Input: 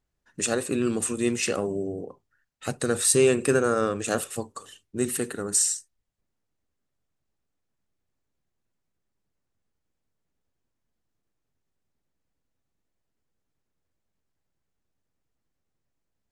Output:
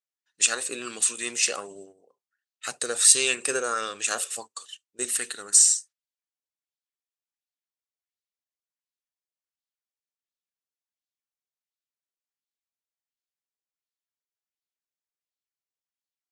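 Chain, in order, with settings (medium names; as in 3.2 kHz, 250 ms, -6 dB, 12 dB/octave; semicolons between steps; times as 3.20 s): frequency weighting ITU-R 468; gate -37 dBFS, range -15 dB; sweeping bell 1.4 Hz 440–4100 Hz +8 dB; trim -5.5 dB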